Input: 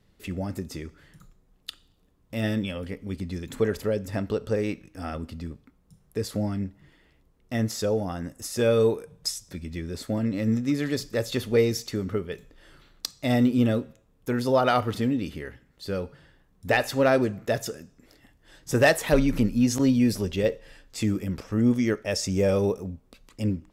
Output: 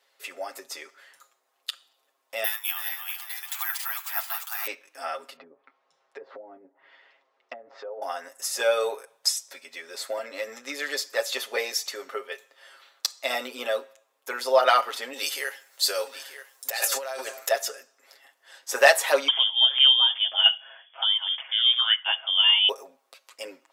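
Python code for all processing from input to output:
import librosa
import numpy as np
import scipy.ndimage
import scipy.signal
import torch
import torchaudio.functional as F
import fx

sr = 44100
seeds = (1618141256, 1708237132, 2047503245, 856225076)

y = fx.chain(x, sr, fx.reverse_delay_fb(ms=226, feedback_pct=59, wet_db=-5.0),
    fx.cheby1_highpass(hz=720.0, order=8),
    fx.resample_bad(factor=3, down='none', up='zero_stuff'), at=(2.44, 4.67))
y = fx.chain(y, sr, fx.over_compress(threshold_db=-30.0, ratio=-1.0),
    fx.gaussian_blur(sigma=1.8),
    fx.env_lowpass_down(base_hz=430.0, full_db=-28.0), at=(5.36, 8.02))
y = fx.chain(y, sr, fx.bass_treble(bass_db=-10, treble_db=14),
    fx.over_compress(threshold_db=-31.0, ratio=-1.0),
    fx.echo_single(ms=934, db=-13.0), at=(15.13, 17.51))
y = fx.chain(y, sr, fx.highpass(hz=45.0, slope=12),
    fx.low_shelf(hz=350.0, db=-4.5),
    fx.freq_invert(carrier_hz=3400), at=(19.28, 22.69))
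y = scipy.signal.sosfilt(scipy.signal.butter(4, 600.0, 'highpass', fs=sr, output='sos'), y)
y = y + 0.71 * np.pad(y, (int(7.4 * sr / 1000.0), 0))[:len(y)]
y = y * librosa.db_to_amplitude(3.5)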